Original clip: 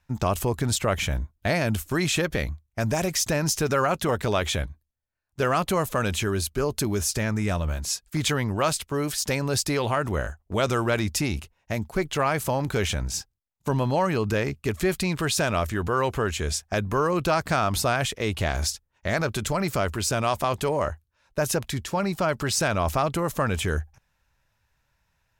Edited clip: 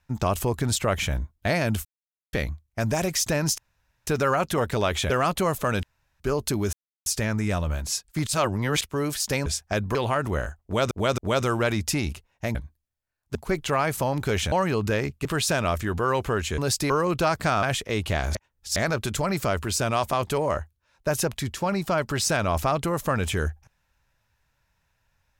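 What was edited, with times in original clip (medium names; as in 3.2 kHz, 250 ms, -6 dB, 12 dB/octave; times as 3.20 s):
1.85–2.33 s: mute
3.58 s: insert room tone 0.49 s
4.61–5.41 s: move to 11.82 s
6.14–6.51 s: room tone
7.04 s: insert silence 0.33 s
8.25–8.79 s: reverse
9.44–9.76 s: swap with 16.47–16.96 s
10.45–10.72 s: loop, 3 plays
12.99–13.95 s: delete
14.68–15.14 s: delete
17.69–17.94 s: delete
18.66–19.07 s: reverse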